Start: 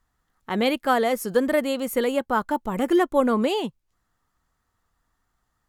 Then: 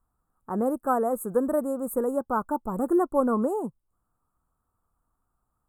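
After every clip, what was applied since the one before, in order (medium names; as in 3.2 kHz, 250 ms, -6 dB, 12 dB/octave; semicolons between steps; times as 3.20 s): elliptic band-stop 1.3–8.3 kHz, stop band 40 dB; trim -2.5 dB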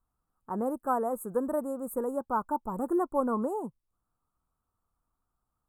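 dynamic bell 940 Hz, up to +6 dB, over -43 dBFS, Q 3.9; trim -5.5 dB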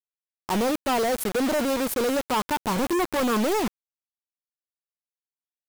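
companded quantiser 2-bit; trim +3 dB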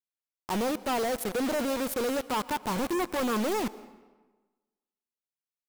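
reverberation RT60 1.3 s, pre-delay 105 ms, DRR 17.5 dB; trim -5 dB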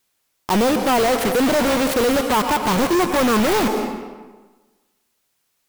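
sine folder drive 13 dB, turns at -23 dBFS; trim +8.5 dB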